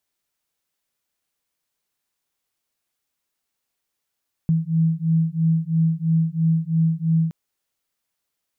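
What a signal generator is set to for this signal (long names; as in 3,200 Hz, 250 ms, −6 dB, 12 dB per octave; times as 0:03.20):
two tones that beat 161 Hz, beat 3 Hz, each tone −20 dBFS 2.82 s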